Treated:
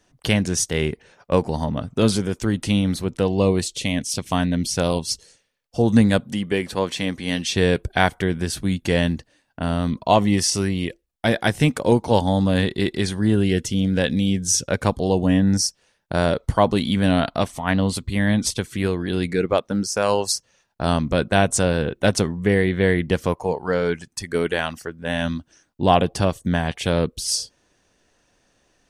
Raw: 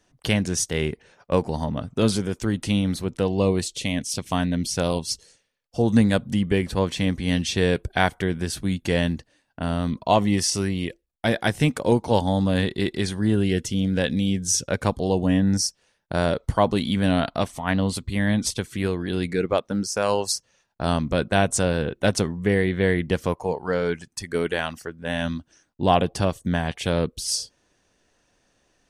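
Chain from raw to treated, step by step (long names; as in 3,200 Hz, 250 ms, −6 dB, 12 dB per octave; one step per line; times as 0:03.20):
0:06.20–0:07.56: high-pass filter 310 Hz 6 dB per octave
level +2.5 dB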